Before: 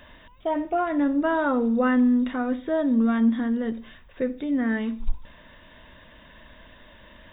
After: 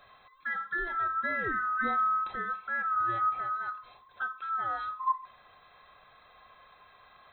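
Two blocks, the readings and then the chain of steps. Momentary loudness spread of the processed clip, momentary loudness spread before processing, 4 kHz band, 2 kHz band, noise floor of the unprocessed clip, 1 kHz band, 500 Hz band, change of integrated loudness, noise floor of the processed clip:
9 LU, 12 LU, n/a, +1.5 dB, -51 dBFS, +2.0 dB, -18.5 dB, -7.0 dB, -60 dBFS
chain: band-swap scrambler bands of 1000 Hz; gain -8.5 dB

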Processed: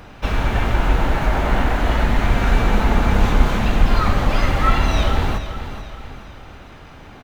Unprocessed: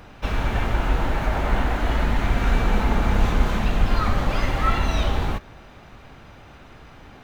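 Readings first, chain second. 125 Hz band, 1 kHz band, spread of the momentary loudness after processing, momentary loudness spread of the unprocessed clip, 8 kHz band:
+4.0 dB, +4.5 dB, 13 LU, 3 LU, n/a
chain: feedback echo 0.433 s, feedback 43%, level -11 dB; gain +4 dB

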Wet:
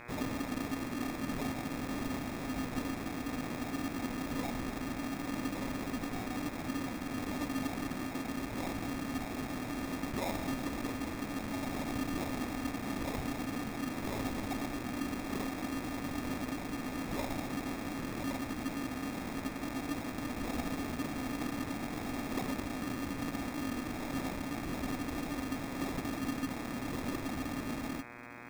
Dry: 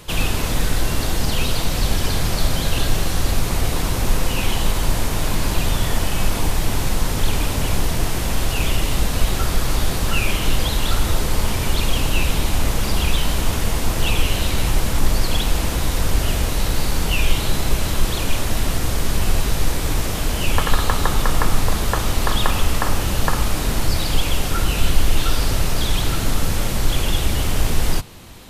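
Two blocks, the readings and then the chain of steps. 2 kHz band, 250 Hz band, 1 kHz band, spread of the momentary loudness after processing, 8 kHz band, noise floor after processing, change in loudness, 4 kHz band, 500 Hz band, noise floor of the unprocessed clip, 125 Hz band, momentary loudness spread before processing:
-15.0 dB, -7.0 dB, -14.0 dB, 2 LU, -22.0 dB, -41 dBFS, -15.5 dB, -22.5 dB, -13.5 dB, -23 dBFS, -21.0 dB, 2 LU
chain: vowel filter i; sample-rate reducer 1500 Hz, jitter 0%; buzz 120 Hz, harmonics 21, -50 dBFS 0 dB/oct

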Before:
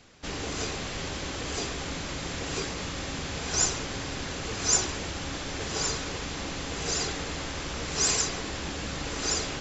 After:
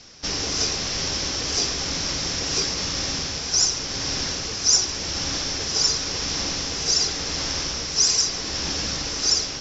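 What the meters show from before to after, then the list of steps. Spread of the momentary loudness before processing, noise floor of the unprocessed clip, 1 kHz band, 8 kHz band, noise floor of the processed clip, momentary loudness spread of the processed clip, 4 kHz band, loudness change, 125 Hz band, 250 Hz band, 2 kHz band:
9 LU, -36 dBFS, +1.5 dB, n/a, -30 dBFS, 7 LU, +11.0 dB, +8.0 dB, +2.0 dB, +2.0 dB, +2.5 dB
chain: vocal rider within 4 dB 0.5 s; synth low-pass 5500 Hz, resonance Q 7.4

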